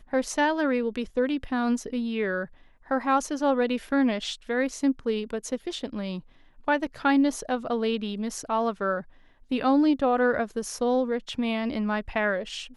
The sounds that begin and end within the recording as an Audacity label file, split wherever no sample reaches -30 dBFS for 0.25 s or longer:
2.910000	6.180000	sound
6.680000	9.010000	sound